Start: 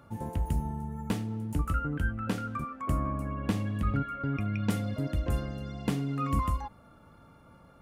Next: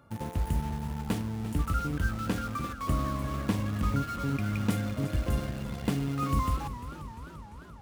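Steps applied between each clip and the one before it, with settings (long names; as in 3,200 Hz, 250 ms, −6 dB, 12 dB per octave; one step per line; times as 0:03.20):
in parallel at −5 dB: bit-depth reduction 6 bits, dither none
on the sum: feedback echo with a swinging delay time 345 ms, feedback 67%, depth 129 cents, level −12.5 dB
level −3.5 dB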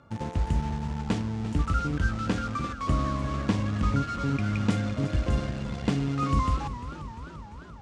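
low-pass filter 7,300 Hz 24 dB per octave
level +3 dB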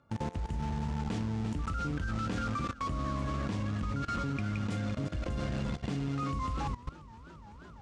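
output level in coarse steps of 17 dB
level +1 dB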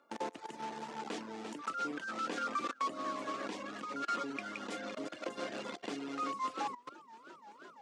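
reverb reduction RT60 0.56 s
high-pass filter 310 Hz 24 dB per octave
level +1.5 dB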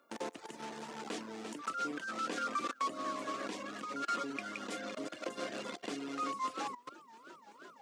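high-shelf EQ 9,400 Hz +10.5 dB
notch filter 860 Hz, Q 12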